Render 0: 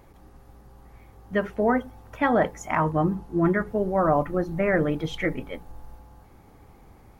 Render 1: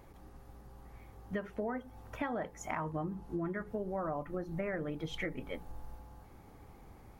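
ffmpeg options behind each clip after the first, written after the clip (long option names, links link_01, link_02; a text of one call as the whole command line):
ffmpeg -i in.wav -af "acompressor=threshold=-31dB:ratio=6,volume=-3.5dB" out.wav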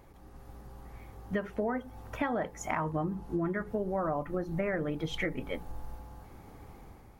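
ffmpeg -i in.wav -af "dynaudnorm=framelen=100:gausssize=7:maxgain=5dB" out.wav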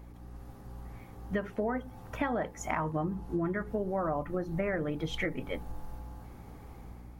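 ffmpeg -i in.wav -af "aeval=exprs='val(0)+0.00398*(sin(2*PI*60*n/s)+sin(2*PI*2*60*n/s)/2+sin(2*PI*3*60*n/s)/3+sin(2*PI*4*60*n/s)/4+sin(2*PI*5*60*n/s)/5)':channel_layout=same" out.wav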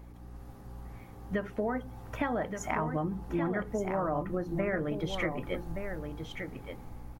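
ffmpeg -i in.wav -af "aecho=1:1:1174:0.447" out.wav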